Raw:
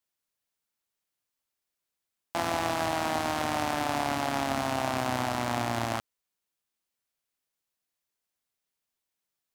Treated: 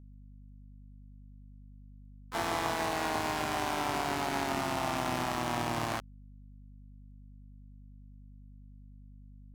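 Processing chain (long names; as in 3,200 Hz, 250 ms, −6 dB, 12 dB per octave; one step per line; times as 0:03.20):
pitch-shifted copies added +5 semitones −4 dB, +7 semitones −11 dB
bit-depth reduction 12 bits, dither none
mains hum 50 Hz, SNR 15 dB
level −4.5 dB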